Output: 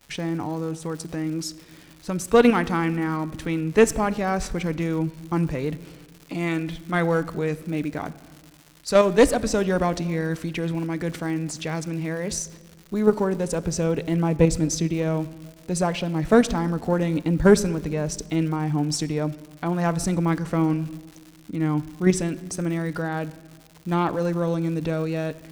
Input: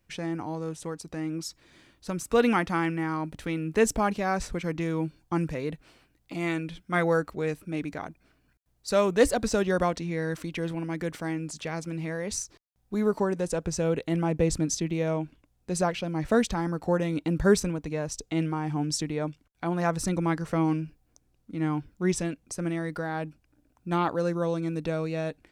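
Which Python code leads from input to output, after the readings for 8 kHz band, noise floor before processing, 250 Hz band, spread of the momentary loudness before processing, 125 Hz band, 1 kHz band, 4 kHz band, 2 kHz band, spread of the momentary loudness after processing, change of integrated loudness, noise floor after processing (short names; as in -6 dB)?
+3.5 dB, -69 dBFS, +5.0 dB, 11 LU, +6.0 dB, +3.0 dB, +4.0 dB, +3.0 dB, 12 LU, +4.5 dB, -50 dBFS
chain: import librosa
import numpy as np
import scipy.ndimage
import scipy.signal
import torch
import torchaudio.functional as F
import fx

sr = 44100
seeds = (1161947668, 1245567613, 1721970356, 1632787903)

p1 = fx.diode_clip(x, sr, knee_db=-14.0)
p2 = fx.low_shelf(p1, sr, hz=360.0, db=3.0)
p3 = fx.level_steps(p2, sr, step_db=21)
p4 = p2 + F.gain(torch.from_numpy(p3), 1.0).numpy()
p5 = fx.dmg_crackle(p4, sr, seeds[0], per_s=220.0, level_db=-37.0)
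p6 = fx.room_shoebox(p5, sr, seeds[1], volume_m3=1500.0, walls='mixed', distance_m=0.33)
y = F.gain(torch.from_numpy(p6), 1.0).numpy()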